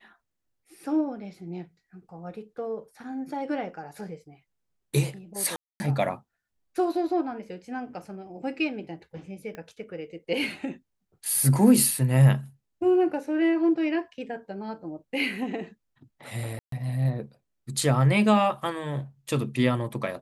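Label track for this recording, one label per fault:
5.560000	5.800000	dropout 240 ms
9.550000	9.550000	pop -26 dBFS
16.590000	16.720000	dropout 133 ms

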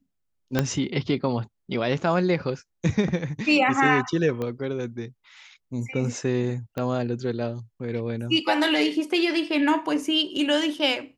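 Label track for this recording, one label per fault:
0.590000	0.590000	pop -7 dBFS
4.420000	4.420000	pop -18 dBFS
6.780000	6.780000	pop -17 dBFS

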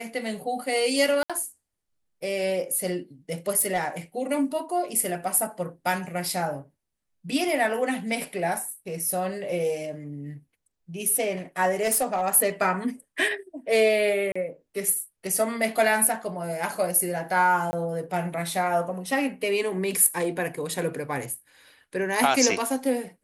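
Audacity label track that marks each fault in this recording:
1.230000	1.300000	dropout 66 ms
3.590000	3.880000	clipped -19.5 dBFS
11.810000	12.220000	clipped -19 dBFS
14.320000	14.360000	dropout 35 ms
17.710000	17.730000	dropout 20 ms

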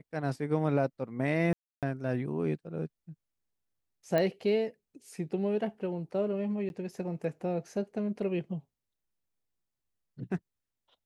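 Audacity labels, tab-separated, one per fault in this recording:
1.530000	1.830000	dropout 297 ms
4.180000	4.180000	pop -16 dBFS
6.690000	6.700000	dropout 11 ms

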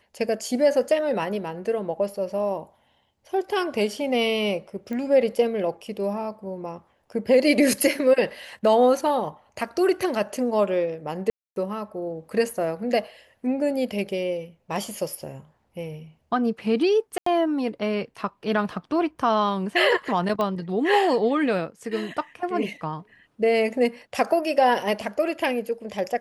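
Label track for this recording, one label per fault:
4.930000	4.930000	pop -21 dBFS
11.300000	11.560000	dropout 262 ms
17.180000	17.260000	dropout 84 ms
18.700000	18.700000	dropout 2.6 ms
20.410000	20.410000	pop -14 dBFS

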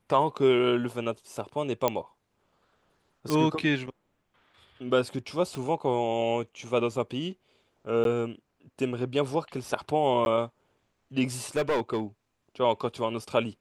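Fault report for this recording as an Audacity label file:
1.880000	1.880000	pop -10 dBFS
3.300000	3.300000	pop -14 dBFS
5.550000	5.550000	pop -23 dBFS
8.040000	8.050000	dropout 12 ms
10.250000	10.260000	dropout
11.560000	12.010000	clipped -22 dBFS

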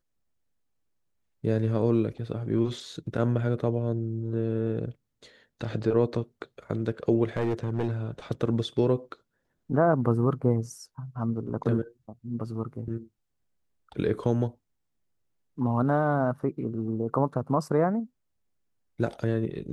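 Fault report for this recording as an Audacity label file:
7.370000	7.910000	clipped -22.5 dBFS

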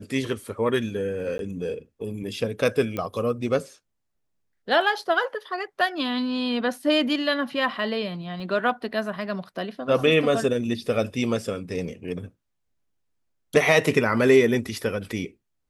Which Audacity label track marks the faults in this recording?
1.380000	1.390000	dropout 12 ms
2.970000	2.970000	pop -16 dBFS
8.400000	8.400000	dropout 2.1 ms

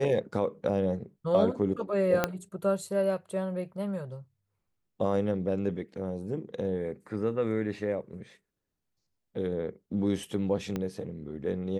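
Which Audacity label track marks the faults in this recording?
2.240000	2.240000	pop -10 dBFS
10.760000	10.760000	pop -19 dBFS

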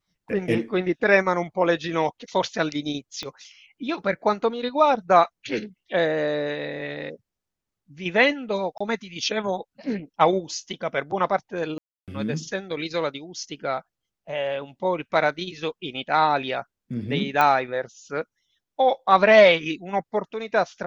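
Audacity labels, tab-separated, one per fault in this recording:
3.230000	3.230000	pop -18 dBFS
8.780000	8.800000	dropout 25 ms
11.780000	12.080000	dropout 297 ms
17.410000	17.410000	pop -8 dBFS

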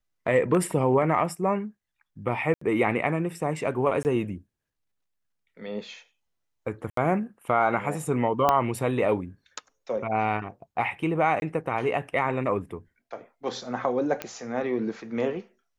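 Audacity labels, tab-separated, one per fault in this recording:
2.540000	2.610000	dropout 74 ms
4.030000	4.050000	dropout 19 ms
6.900000	6.970000	dropout 73 ms
8.490000	8.490000	pop -8 dBFS
11.400000	11.420000	dropout 21 ms
14.220000	14.220000	pop -15 dBFS

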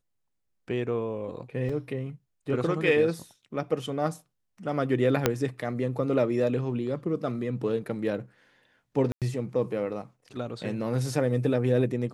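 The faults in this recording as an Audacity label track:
1.690000	1.690000	dropout 4.4 ms
5.260000	5.260000	pop -6 dBFS
9.120000	9.220000	dropout 97 ms

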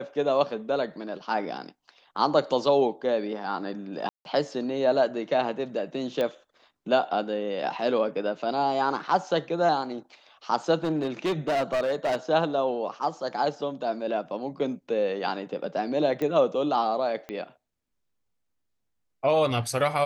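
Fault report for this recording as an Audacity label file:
4.090000	4.250000	dropout 161 ms
6.210000	6.210000	pop -16 dBFS
10.840000	12.160000	clipped -22 dBFS
16.220000	16.220000	pop -18 dBFS
17.290000	17.290000	pop -21 dBFS

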